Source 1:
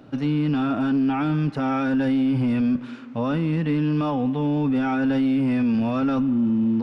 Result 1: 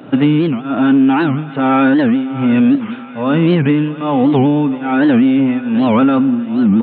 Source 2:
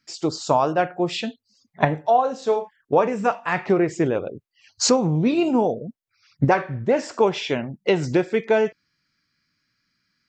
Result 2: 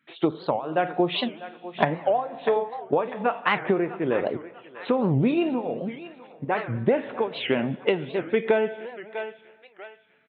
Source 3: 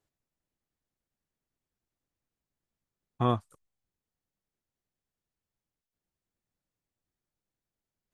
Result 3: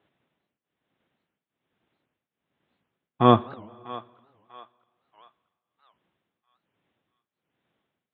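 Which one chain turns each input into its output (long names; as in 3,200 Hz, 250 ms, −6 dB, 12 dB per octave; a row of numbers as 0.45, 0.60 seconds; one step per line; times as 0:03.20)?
shaped tremolo triangle 1.2 Hz, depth 95%
feedback echo with a high-pass in the loop 645 ms, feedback 44%, high-pass 750 Hz, level −16 dB
downsampling to 8,000 Hz
high-pass filter 160 Hz 12 dB per octave
dense smooth reverb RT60 1.9 s, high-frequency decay 0.85×, DRR 19.5 dB
downward compressor 6 to 1, threshold −26 dBFS
wow of a warped record 78 rpm, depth 250 cents
normalise the peak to −2 dBFS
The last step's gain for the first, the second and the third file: +18.0, +7.5, +19.0 decibels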